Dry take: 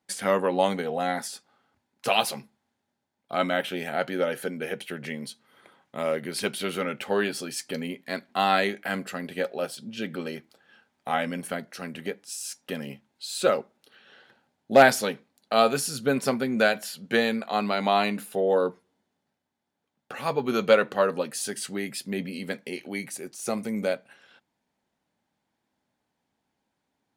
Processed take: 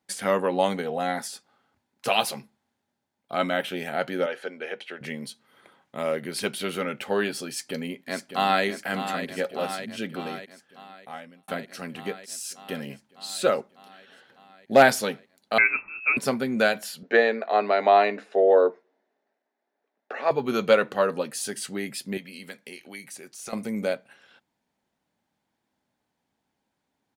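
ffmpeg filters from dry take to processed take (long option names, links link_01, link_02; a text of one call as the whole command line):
ffmpeg -i in.wav -filter_complex "[0:a]asettb=1/sr,asplit=3[link_01][link_02][link_03];[link_01]atrim=end=4.264[link_04];[link_02]atrim=start=4.26:end=5.01,asetpts=PTS-STARTPTS,afade=type=in:duration=0.004:curve=qsin,afade=type=out:start_time=0.746:duration=0.004:curve=qsin,highpass=430,lowpass=4500[link_05];[link_03]atrim=start=5.006[link_06];[link_04][link_05]acrossfade=duration=0.004:curve1=hsin:curve2=qsin[link_07];[link_07][link_06]acrossfade=duration=0.004:curve1=qsin:curve2=hsin,asplit=2[link_08][link_09];[link_09]afade=type=in:start_time=7.47:duration=0.01,afade=type=out:start_time=8.65:duration=0.01,aecho=0:1:600|1200|1800|2400|3000|3600|4200|4800|5400|6000|6600|7200:0.354813|0.26611|0.199583|0.149687|0.112265|0.0841989|0.0631492|0.0473619|0.0355214|0.0266411|0.0199808|0.0149856[link_10];[link_08][link_10]amix=inputs=2:normalize=0,asettb=1/sr,asplit=3[link_11][link_12][link_13];[link_11]atrim=end=15.584[link_14];[link_12]atrim=start=15.58:end=16.17,asetpts=PTS-STARTPTS,afade=type=in:duration=0.004:curve=qsin,afade=type=out:start_time=0.586:duration=0.004:curve=qsin,lowpass=frequency=2400:width_type=q:width=0.5098,lowpass=frequency=2400:width_type=q:width=0.6013,lowpass=frequency=2400:width_type=q:width=0.9,lowpass=frequency=2400:width_type=q:width=2.563,afreqshift=-2800[link_15];[link_13]atrim=start=16.166[link_16];[link_14][link_15]acrossfade=duration=0.004:curve1=hsin:curve2=qsin[link_17];[link_17][link_16]acrossfade=duration=0.004:curve1=qsin:curve2=hsin,asettb=1/sr,asplit=3[link_18][link_19][link_20];[link_18]atrim=end=17.034[link_21];[link_19]atrim=start=17.03:end=20.31,asetpts=PTS-STARTPTS,afade=type=in:duration=0.004:curve=qsin,afade=type=out:start_time=3.276:duration=0.004:curve=qsin,highpass=frequency=270:width=0.5412,highpass=frequency=270:width=1.3066,equalizer=frequency=420:width_type=q:width=4:gain=7,equalizer=frequency=650:width_type=q:width=4:gain=9,equalizer=frequency=1800:width_type=q:width=4:gain=6,equalizer=frequency=3200:width_type=q:width=4:gain=-7,equalizer=frequency=4600:width_type=q:width=4:gain=-5,lowpass=frequency=5200:width=0.5412,lowpass=frequency=5200:width=1.3066[link_22];[link_20]atrim=start=20.306[link_23];[link_21][link_22]acrossfade=duration=0.004:curve1=hsin:curve2=qsin[link_24];[link_24][link_23]acrossfade=duration=0.004:curve1=qsin:curve2=hsin,asettb=1/sr,asplit=3[link_25][link_26][link_27];[link_25]atrim=end=22.174[link_28];[link_26]atrim=start=22.17:end=23.53,asetpts=PTS-STARTPTS,afade=type=in:duration=0.004:curve=qsin,afade=type=out:start_time=1.356:duration=0.004:curve=qsin,acrossover=split=940|6400[link_29][link_30][link_31];[link_29]acompressor=threshold=-45dB:ratio=4[link_32];[link_30]acompressor=threshold=-40dB:ratio=4[link_33];[link_31]acompressor=threshold=-43dB:ratio=4[link_34];[link_32][link_33][link_34]amix=inputs=3:normalize=0[link_35];[link_27]atrim=start=23.526[link_36];[link_28][link_35]acrossfade=duration=0.004:curve1=hsin:curve2=qsin[link_37];[link_37][link_36]acrossfade=duration=0.004:curve1=qsin:curve2=hsin,asplit=2[link_38][link_39];[link_38]atrim=end=11.48,asetpts=PTS-STARTPTS,afade=type=out:start_time=10.03:duration=1.45[link_40];[link_39]atrim=start=11.48,asetpts=PTS-STARTPTS,afade=type=in:duration=0.004:curve=hsin[link_41];[link_40][link_41]concat=n=2:v=0:a=1" out.wav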